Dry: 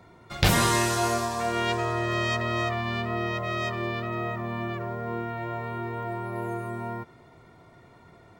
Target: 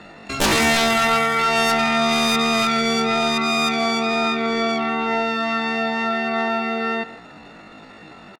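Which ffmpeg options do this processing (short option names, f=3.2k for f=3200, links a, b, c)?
-filter_complex "[0:a]lowpass=2.9k,aeval=exprs='0.398*(cos(1*acos(clip(val(0)/0.398,-1,1)))-cos(1*PI/2))+0.2*(cos(3*acos(clip(val(0)/0.398,-1,1)))-cos(3*PI/2))+0.178*(cos(7*acos(clip(val(0)/0.398,-1,1)))-cos(7*PI/2))':c=same,asetrate=85689,aresample=44100,atempo=0.514651,asplit=2[a][b];[b]adelay=150,highpass=300,lowpass=3.4k,asoftclip=type=hard:threshold=-14dB,volume=-15dB[c];[a][c]amix=inputs=2:normalize=0"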